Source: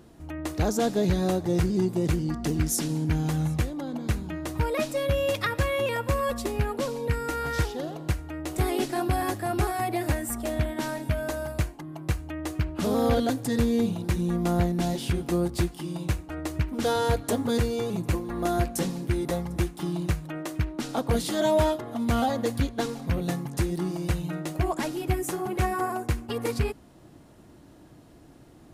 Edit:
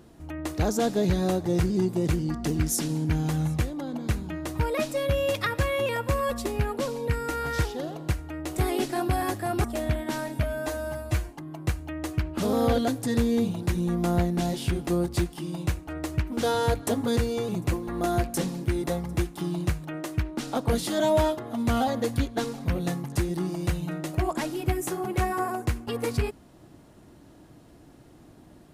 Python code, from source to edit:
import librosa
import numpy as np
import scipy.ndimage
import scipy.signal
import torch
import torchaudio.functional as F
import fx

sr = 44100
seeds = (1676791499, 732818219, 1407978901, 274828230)

y = fx.edit(x, sr, fx.cut(start_s=9.64, length_s=0.7),
    fx.stretch_span(start_s=11.13, length_s=0.57, factor=1.5), tone=tone)